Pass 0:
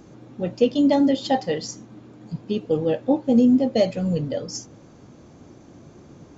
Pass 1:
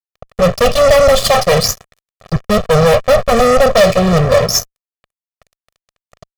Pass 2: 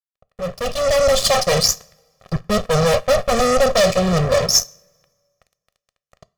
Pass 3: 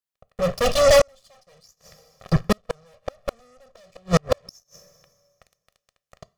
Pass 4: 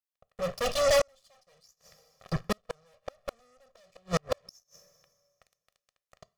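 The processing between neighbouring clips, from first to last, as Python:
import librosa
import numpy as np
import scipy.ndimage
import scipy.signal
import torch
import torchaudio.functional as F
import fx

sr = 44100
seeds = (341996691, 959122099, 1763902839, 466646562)

y1 = fx.lower_of_two(x, sr, delay_ms=1.5)
y1 = fx.fuzz(y1, sr, gain_db=32.0, gate_db=-39.0)
y1 = y1 + 0.78 * np.pad(y1, (int(1.7 * sr / 1000.0), 0))[:len(y1)]
y1 = y1 * 10.0 ** (3.5 / 20.0)
y2 = fx.fade_in_head(y1, sr, length_s=1.28)
y2 = fx.rev_double_slope(y2, sr, seeds[0], early_s=0.32, late_s=1.7, knee_db=-19, drr_db=16.5)
y2 = fx.dynamic_eq(y2, sr, hz=6200.0, q=0.84, threshold_db=-30.0, ratio=4.0, max_db=7)
y2 = y2 * 10.0 ** (-6.5 / 20.0)
y3 = fx.gate_flip(y2, sr, shuts_db=-9.0, range_db=-41)
y3 = y3 * 10.0 ** (3.0 / 20.0)
y4 = fx.low_shelf(y3, sr, hz=430.0, db=-5.5)
y4 = y4 * 10.0 ** (-7.0 / 20.0)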